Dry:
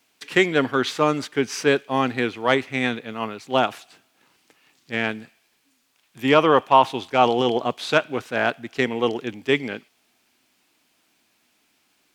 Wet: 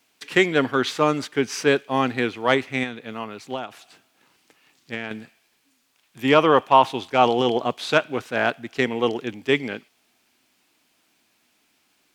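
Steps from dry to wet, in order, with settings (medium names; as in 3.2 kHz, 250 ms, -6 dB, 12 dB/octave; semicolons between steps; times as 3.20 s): 2.83–5.11 s: compression 16:1, threshold -26 dBFS, peak gain reduction 13 dB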